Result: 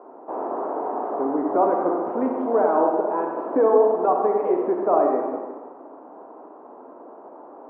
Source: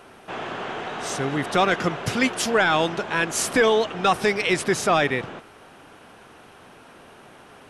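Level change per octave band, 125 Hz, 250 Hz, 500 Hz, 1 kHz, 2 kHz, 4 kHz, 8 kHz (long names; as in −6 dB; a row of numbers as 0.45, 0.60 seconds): below −15 dB, +1.5 dB, +4.0 dB, +1.5 dB, −19.0 dB, below −40 dB, below −40 dB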